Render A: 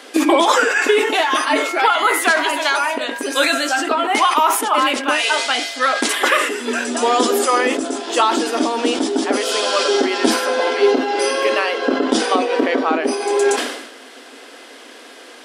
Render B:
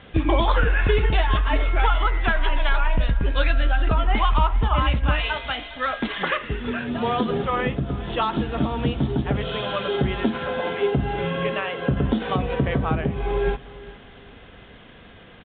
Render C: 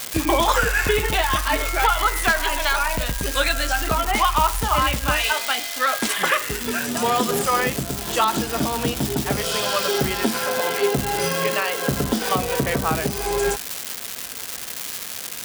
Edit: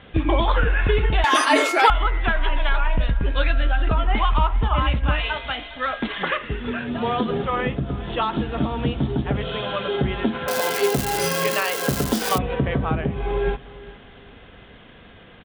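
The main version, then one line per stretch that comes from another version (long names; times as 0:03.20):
B
0:01.24–0:01.90: punch in from A
0:10.48–0:12.38: punch in from C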